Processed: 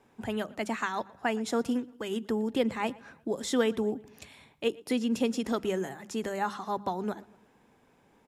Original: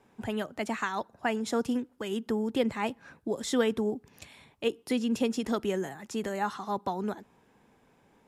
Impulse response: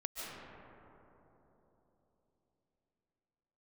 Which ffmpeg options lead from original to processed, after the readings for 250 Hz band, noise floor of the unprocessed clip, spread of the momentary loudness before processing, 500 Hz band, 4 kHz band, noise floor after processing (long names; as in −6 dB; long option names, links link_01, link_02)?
0.0 dB, −65 dBFS, 8 LU, 0.0 dB, 0.0 dB, −65 dBFS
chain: -filter_complex "[0:a]bandreject=frequency=50:width_type=h:width=6,bandreject=frequency=100:width_type=h:width=6,bandreject=frequency=150:width_type=h:width=6,bandreject=frequency=200:width_type=h:width=6,asplit=2[link_01][link_02];[link_02]adelay=117,lowpass=frequency=4900:poles=1,volume=-22.5dB,asplit=2[link_03][link_04];[link_04]adelay=117,lowpass=frequency=4900:poles=1,volume=0.49,asplit=2[link_05][link_06];[link_06]adelay=117,lowpass=frequency=4900:poles=1,volume=0.49[link_07];[link_01][link_03][link_05][link_07]amix=inputs=4:normalize=0"